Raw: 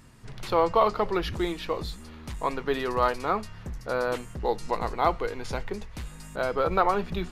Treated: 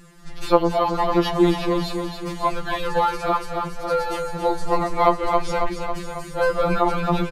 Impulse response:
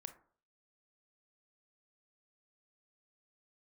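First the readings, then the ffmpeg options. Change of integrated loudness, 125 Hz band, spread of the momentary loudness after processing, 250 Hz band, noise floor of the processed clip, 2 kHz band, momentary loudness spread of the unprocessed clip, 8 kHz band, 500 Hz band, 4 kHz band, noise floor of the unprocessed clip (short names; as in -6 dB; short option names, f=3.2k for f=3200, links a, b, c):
+5.5 dB, +7.0 dB, 10 LU, +9.5 dB, -35 dBFS, +4.5 dB, 16 LU, +6.5 dB, +5.5 dB, +6.5 dB, -45 dBFS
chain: -filter_complex "[0:a]asplit=2[a][b];[b]aecho=0:1:274|548|822|1096|1370|1644|1918|2192:0.447|0.268|0.161|0.0965|0.0579|0.0347|0.0208|0.0125[c];[a][c]amix=inputs=2:normalize=0,alimiter=level_in=12dB:limit=-1dB:release=50:level=0:latency=1,afftfilt=real='re*2.83*eq(mod(b,8),0)':imag='im*2.83*eq(mod(b,8),0)':win_size=2048:overlap=0.75,volume=-4dB"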